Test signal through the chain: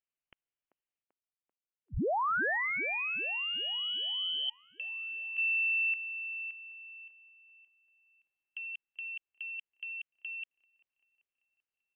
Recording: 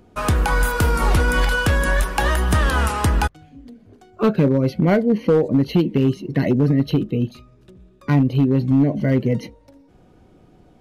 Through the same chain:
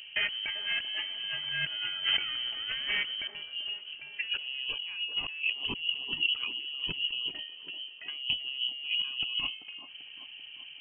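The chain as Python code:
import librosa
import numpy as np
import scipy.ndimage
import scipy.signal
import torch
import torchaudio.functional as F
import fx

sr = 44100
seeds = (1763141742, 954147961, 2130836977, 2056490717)

p1 = fx.peak_eq(x, sr, hz=2100.0, db=-6.0, octaves=1.5)
p2 = fx.over_compress(p1, sr, threshold_db=-29.0, ratio=-1.0)
p3 = fx.freq_invert(p2, sr, carrier_hz=3100)
p4 = p3 + fx.echo_wet_bandpass(p3, sr, ms=389, feedback_pct=56, hz=490.0, wet_db=-7.0, dry=0)
y = p4 * 10.0 ** (-6.0 / 20.0)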